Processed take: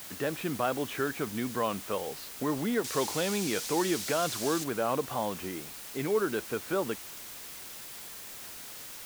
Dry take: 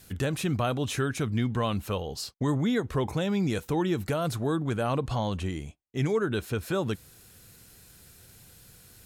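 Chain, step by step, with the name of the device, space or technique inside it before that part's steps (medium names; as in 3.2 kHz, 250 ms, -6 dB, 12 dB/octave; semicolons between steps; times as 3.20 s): wax cylinder (band-pass 280–2400 Hz; wow and flutter; white noise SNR 11 dB); 2.84–4.64 s: peaking EQ 5.8 kHz +11.5 dB 2.2 oct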